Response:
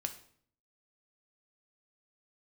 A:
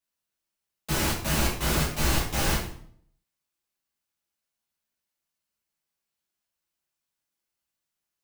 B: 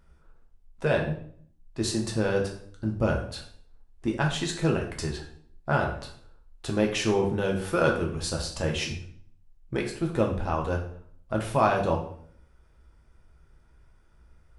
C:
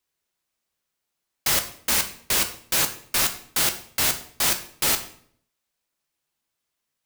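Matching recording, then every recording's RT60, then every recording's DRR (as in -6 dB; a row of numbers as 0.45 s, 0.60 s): C; 0.60 s, 0.60 s, 0.60 s; -7.5 dB, 0.0 dB, 6.0 dB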